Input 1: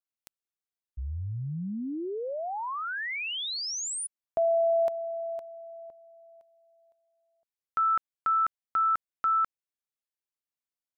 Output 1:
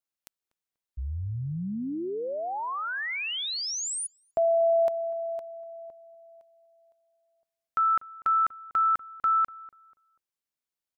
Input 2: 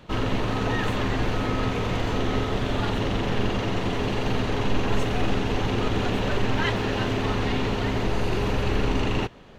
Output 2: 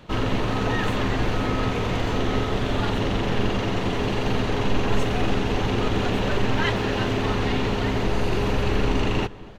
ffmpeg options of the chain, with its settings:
ffmpeg -i in.wav -filter_complex "[0:a]asplit=2[link_01][link_02];[link_02]adelay=243,lowpass=frequency=1400:poles=1,volume=-19dB,asplit=2[link_03][link_04];[link_04]adelay=243,lowpass=frequency=1400:poles=1,volume=0.33,asplit=2[link_05][link_06];[link_06]adelay=243,lowpass=frequency=1400:poles=1,volume=0.33[link_07];[link_01][link_03][link_05][link_07]amix=inputs=4:normalize=0,volume=1.5dB" out.wav

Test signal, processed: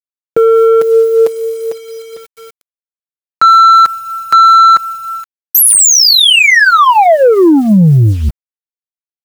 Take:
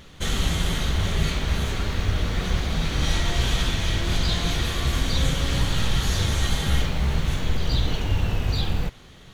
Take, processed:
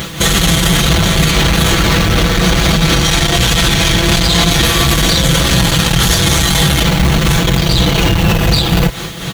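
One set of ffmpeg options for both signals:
ffmpeg -i in.wav -af "highshelf=frequency=9800:gain=9.5,asoftclip=type=tanh:threshold=-22.5dB,highpass=54,aecho=1:1:6:0.62,tremolo=f=4.1:d=0.53,acrusher=bits=9:mix=0:aa=0.000001,alimiter=level_in=26.5dB:limit=-1dB:release=50:level=0:latency=1,volume=-1dB" out.wav

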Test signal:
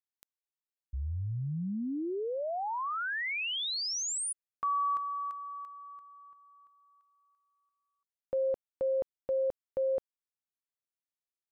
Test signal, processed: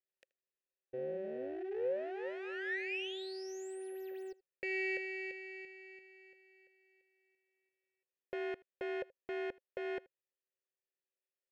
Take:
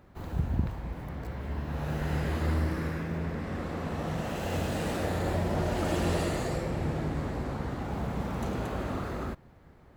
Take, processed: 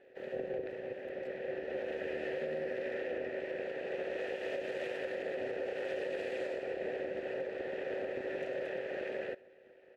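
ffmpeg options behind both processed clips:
ffmpeg -i in.wav -filter_complex "[0:a]aeval=exprs='val(0)*sin(2*PI*190*n/s)':channel_layout=same,aeval=exprs='abs(val(0))':channel_layout=same,asplit=3[link_01][link_02][link_03];[link_01]bandpass=frequency=530:width_type=q:width=8,volume=0dB[link_04];[link_02]bandpass=frequency=1840:width_type=q:width=8,volume=-6dB[link_05];[link_03]bandpass=frequency=2480:width_type=q:width=8,volume=-9dB[link_06];[link_04][link_05][link_06]amix=inputs=3:normalize=0,alimiter=level_in=19dB:limit=-24dB:level=0:latency=1:release=141,volume=-19dB,asplit=2[link_07][link_08];[link_08]aecho=0:1:79:0.0668[link_09];[link_07][link_09]amix=inputs=2:normalize=0,volume=14.5dB" out.wav

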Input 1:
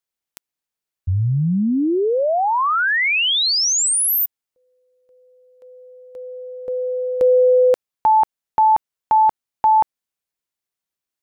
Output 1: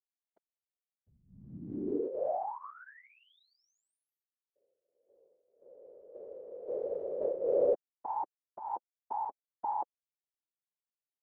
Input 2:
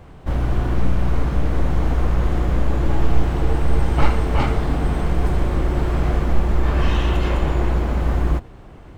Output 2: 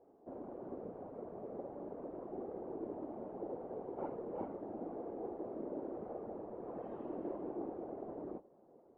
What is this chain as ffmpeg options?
ffmpeg -i in.wav -af "flanger=delay=2.4:depth=2.3:regen=-33:speed=0.39:shape=triangular,asuperpass=centerf=470:order=4:qfactor=1.2,afftfilt=real='hypot(re,im)*cos(2*PI*random(0))':imag='hypot(re,im)*sin(2*PI*random(1))':win_size=512:overlap=0.75,volume=-4dB" out.wav

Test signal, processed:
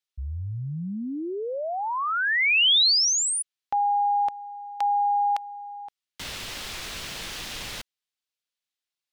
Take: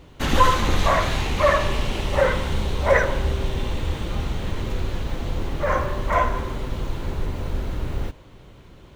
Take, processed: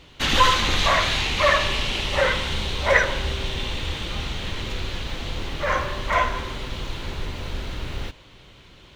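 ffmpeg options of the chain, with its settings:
ffmpeg -i in.wav -af "equalizer=frequency=3500:width=0.51:gain=13,volume=-4.5dB" out.wav

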